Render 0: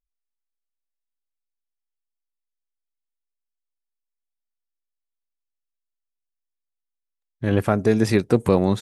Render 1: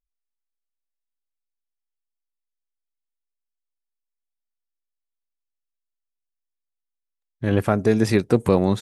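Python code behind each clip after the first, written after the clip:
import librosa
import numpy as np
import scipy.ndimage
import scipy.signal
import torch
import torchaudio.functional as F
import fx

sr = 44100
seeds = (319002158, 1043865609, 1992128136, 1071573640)

y = x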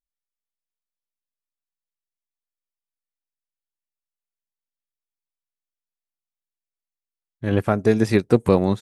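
y = fx.upward_expand(x, sr, threshold_db=-35.0, expansion=1.5)
y = y * librosa.db_to_amplitude(2.5)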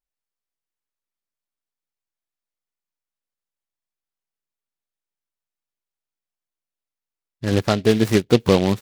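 y = fx.noise_mod_delay(x, sr, seeds[0], noise_hz=2900.0, depth_ms=0.071)
y = y * librosa.db_to_amplitude(1.0)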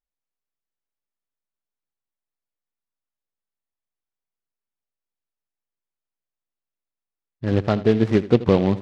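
y = fx.spacing_loss(x, sr, db_at_10k=26)
y = fx.echo_feedback(y, sr, ms=81, feedback_pct=46, wet_db=-17.0)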